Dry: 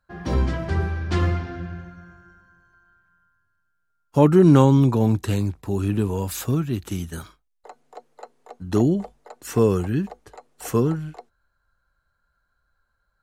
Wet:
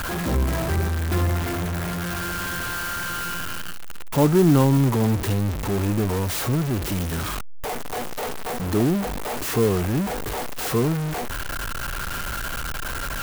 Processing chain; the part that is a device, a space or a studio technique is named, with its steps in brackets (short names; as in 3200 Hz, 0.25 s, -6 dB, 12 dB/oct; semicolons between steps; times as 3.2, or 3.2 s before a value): early CD player with a faulty converter (zero-crossing step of -17.5 dBFS; clock jitter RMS 0.046 ms); gain -4.5 dB